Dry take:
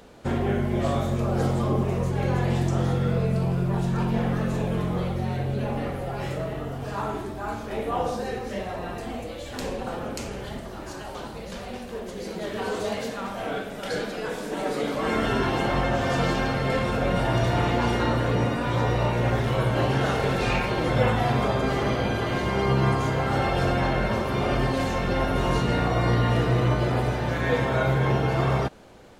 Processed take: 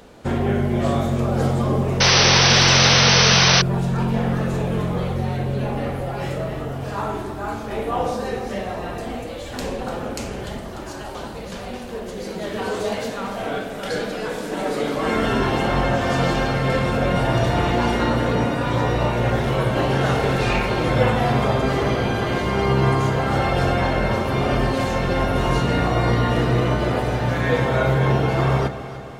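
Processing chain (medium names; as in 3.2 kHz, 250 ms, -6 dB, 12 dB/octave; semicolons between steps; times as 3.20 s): echo whose repeats swap between lows and highs 148 ms, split 810 Hz, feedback 74%, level -10.5 dB; painted sound noise, 2.00–3.62 s, 400–6200 Hz -19 dBFS; trim +3.5 dB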